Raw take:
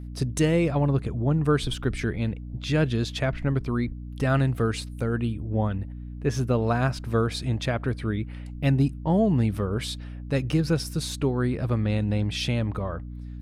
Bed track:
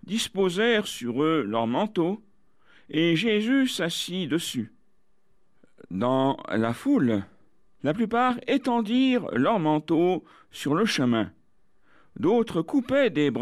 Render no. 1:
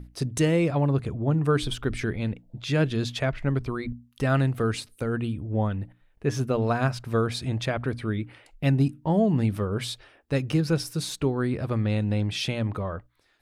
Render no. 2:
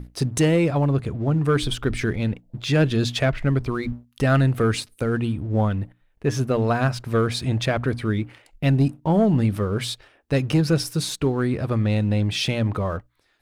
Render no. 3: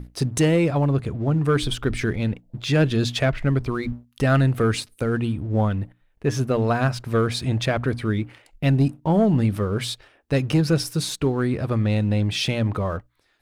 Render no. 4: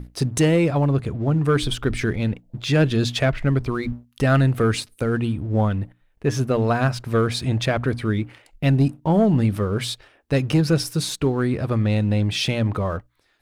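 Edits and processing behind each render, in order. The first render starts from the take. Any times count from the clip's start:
hum notches 60/120/180/240/300 Hz
gain riding 2 s; waveshaping leveller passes 1
no audible change
trim +1 dB

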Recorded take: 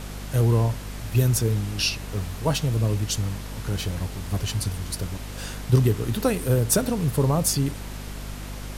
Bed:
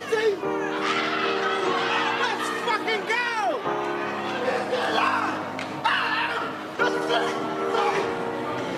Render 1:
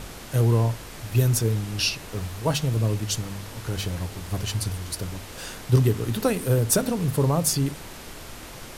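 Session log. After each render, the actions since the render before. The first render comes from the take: de-hum 50 Hz, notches 5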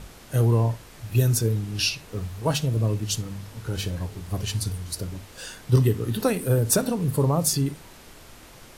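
noise print and reduce 7 dB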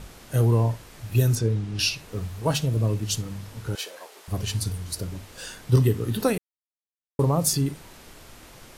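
1.35–1.79 s: distance through air 71 m; 3.75–4.28 s: high-pass 490 Hz 24 dB/octave; 6.38–7.19 s: mute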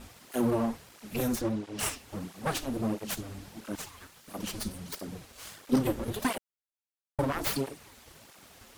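full-wave rectifier; cancelling through-zero flanger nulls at 1.5 Hz, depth 6.9 ms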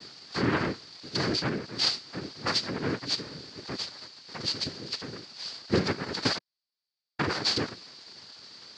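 noise-vocoded speech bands 3; resonant low-pass 4.6 kHz, resonance Q 10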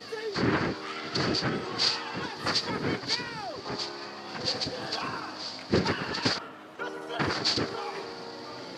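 add bed -13 dB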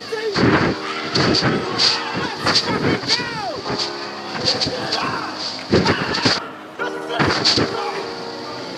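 trim +11.5 dB; peak limiter -3 dBFS, peak gain reduction 3 dB

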